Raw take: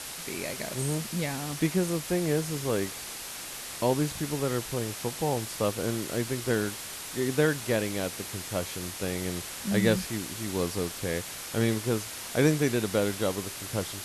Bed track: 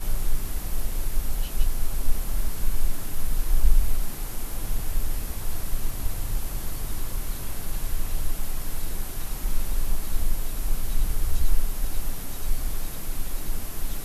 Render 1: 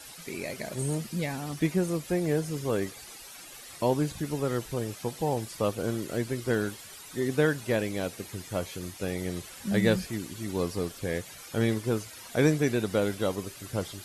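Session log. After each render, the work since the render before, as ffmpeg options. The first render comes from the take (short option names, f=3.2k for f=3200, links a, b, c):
-af "afftdn=nr=12:nf=-40"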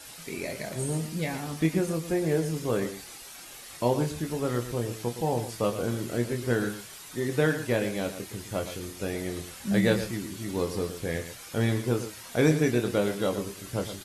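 -filter_complex "[0:a]asplit=2[a][b];[b]adelay=25,volume=-7dB[c];[a][c]amix=inputs=2:normalize=0,asplit=2[d][e];[e]aecho=0:1:115:0.282[f];[d][f]amix=inputs=2:normalize=0"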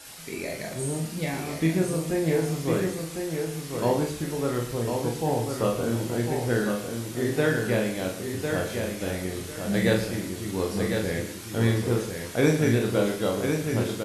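-filter_complex "[0:a]asplit=2[a][b];[b]adelay=43,volume=-4.5dB[c];[a][c]amix=inputs=2:normalize=0,aecho=1:1:1052|2104|3156:0.531|0.138|0.0359"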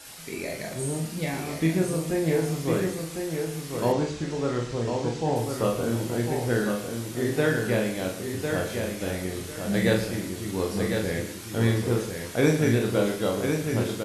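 -filter_complex "[0:a]asettb=1/sr,asplit=3[a][b][c];[a]atrim=end=3.924[d];[b]atrim=start=3.92:end=5.36,asetpts=PTS-STARTPTS,afade=t=in:d=0.004:c=qsin,afade=t=out:st=1.436:d=0.004:c=qsin,lowpass=f=7.3k:w=0.5412,lowpass=f=7.3k:w=1.3066[e];[c]atrim=start=5.356[f];[d][e]acrossfade=d=0.004:c1=hsin:c2=qsin[g];[g][f]acrossfade=d=0.004:c1=qsin:c2=hsin"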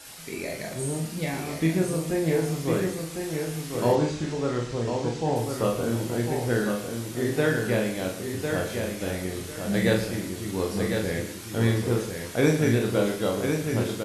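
-filter_complex "[0:a]asettb=1/sr,asplit=3[a][b][c];[a]atrim=end=3.184[d];[b]atrim=start=3.18:end=4.34,asetpts=PTS-STARTPTS,afade=t=in:d=0.004:c=qsin,afade=t=out:st=1.156:d=0.004:c=qsin,asplit=2[e][f];[f]adelay=33,volume=-5dB[g];[e][g]amix=inputs=2:normalize=0,atrim=end_sample=51156[h];[c]atrim=start=4.336[i];[d][h]acrossfade=d=0.004:c1=hsin:c2=qsin[j];[j][i]acrossfade=d=0.004:c1=qsin:c2=hsin"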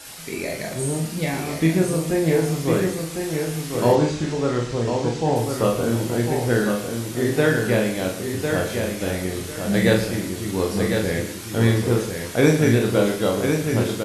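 -af "volume=5dB"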